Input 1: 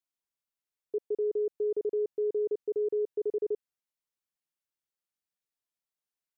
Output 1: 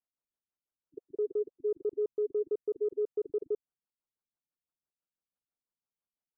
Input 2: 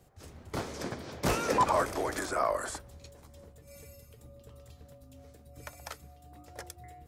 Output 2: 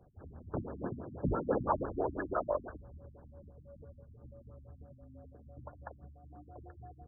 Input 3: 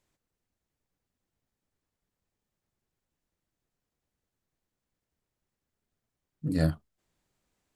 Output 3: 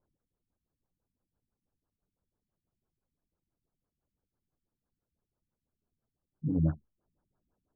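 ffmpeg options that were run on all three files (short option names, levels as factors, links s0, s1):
-af "asoftclip=type=tanh:threshold=0.158,afftfilt=real='re*lt(b*sr/1024,270*pow(1800/270,0.5+0.5*sin(2*PI*6*pts/sr)))':imag='im*lt(b*sr/1024,270*pow(1800/270,0.5+0.5*sin(2*PI*6*pts/sr)))':win_size=1024:overlap=0.75"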